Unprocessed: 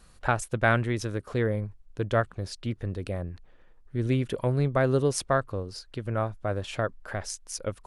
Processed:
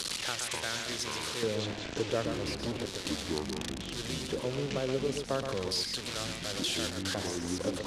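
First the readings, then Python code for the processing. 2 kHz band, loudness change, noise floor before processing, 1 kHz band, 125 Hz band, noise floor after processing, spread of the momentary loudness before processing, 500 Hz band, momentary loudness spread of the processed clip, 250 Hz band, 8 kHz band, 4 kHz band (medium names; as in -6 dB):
-6.0 dB, -4.5 dB, -56 dBFS, -8.5 dB, -11.5 dB, -41 dBFS, 11 LU, -5.5 dB, 4 LU, -4.0 dB, +2.5 dB, +9.0 dB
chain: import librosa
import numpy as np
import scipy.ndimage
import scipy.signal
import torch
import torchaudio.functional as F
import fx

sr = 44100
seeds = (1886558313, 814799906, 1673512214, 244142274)

y = fx.delta_mod(x, sr, bps=64000, step_db=-24.0)
y = fx.band_shelf(y, sr, hz=1300.0, db=-11.5, octaves=2.4)
y = fx.rider(y, sr, range_db=5, speed_s=0.5)
y = fx.filter_lfo_bandpass(y, sr, shape='square', hz=0.35, low_hz=850.0, high_hz=3300.0, q=0.71)
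y = y + 10.0 ** (-7.0 / 20.0) * np.pad(y, (int(123 * sr / 1000.0), 0))[:len(y)]
y = fx.echo_pitch(y, sr, ms=111, semitones=-7, count=2, db_per_echo=-6.0)
y = fx.band_squash(y, sr, depth_pct=40)
y = y * librosa.db_to_amplitude(2.0)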